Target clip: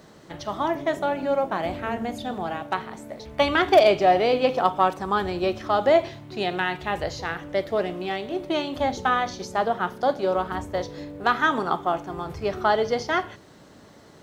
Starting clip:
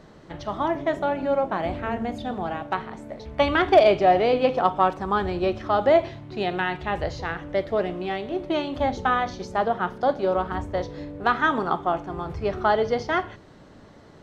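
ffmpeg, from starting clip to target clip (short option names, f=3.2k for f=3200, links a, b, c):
-af "highpass=f=100:p=1,aemphasis=mode=production:type=50fm"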